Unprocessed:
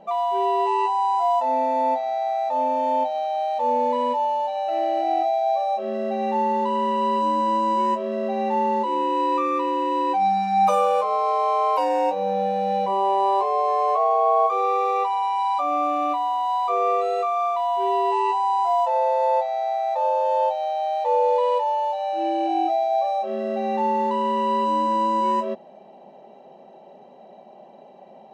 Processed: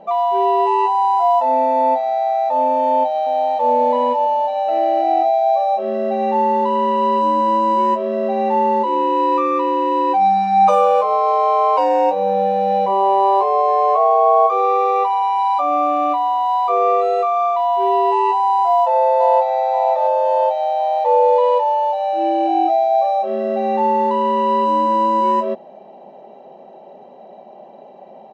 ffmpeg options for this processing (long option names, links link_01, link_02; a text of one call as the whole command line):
ffmpeg -i in.wav -filter_complex "[0:a]asplit=2[link_01][link_02];[link_02]afade=type=in:start_time=2.74:duration=0.01,afade=type=out:start_time=3.74:duration=0.01,aecho=0:1:520|1040|1560|2080:0.223872|0.100742|0.0453341|0.0204003[link_03];[link_01][link_03]amix=inputs=2:normalize=0,asplit=2[link_04][link_05];[link_05]afade=type=in:start_time=18.67:duration=0.01,afade=type=out:start_time=19.54:duration=0.01,aecho=0:1:530|1060|1590|2120|2650|3180:0.421697|0.210848|0.105424|0.0527121|0.026356|0.013178[link_06];[link_04][link_06]amix=inputs=2:normalize=0,lowpass=6800,equalizer=frequency=570:width_type=o:width=2.7:gain=5,volume=1.5dB" out.wav